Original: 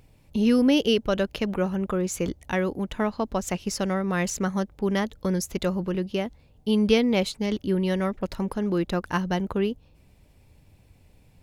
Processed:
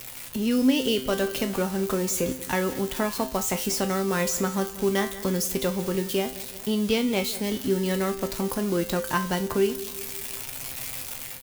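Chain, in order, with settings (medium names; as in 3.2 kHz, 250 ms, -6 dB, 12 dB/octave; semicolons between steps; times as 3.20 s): zero-crossing glitches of -23 dBFS; level rider gain up to 7.5 dB; feedback comb 130 Hz, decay 0.35 s, harmonics all, mix 80%; feedback delay 184 ms, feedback 44%, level -18 dB; three bands compressed up and down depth 40%; trim +2 dB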